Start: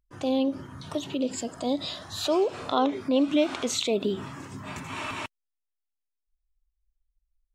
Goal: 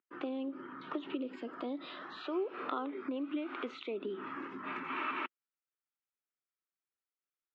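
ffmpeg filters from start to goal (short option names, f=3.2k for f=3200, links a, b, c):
-af "equalizer=f=750:w=0.74:g=-5,acompressor=threshold=-34dB:ratio=12,highpass=f=260:w=0.5412,highpass=f=260:w=1.3066,equalizer=f=350:t=q:w=4:g=4,equalizer=f=650:t=q:w=4:g=-6,equalizer=f=1.3k:t=q:w=4:g=8,lowpass=f=2.6k:w=0.5412,lowpass=f=2.6k:w=1.3066,volume=1dB"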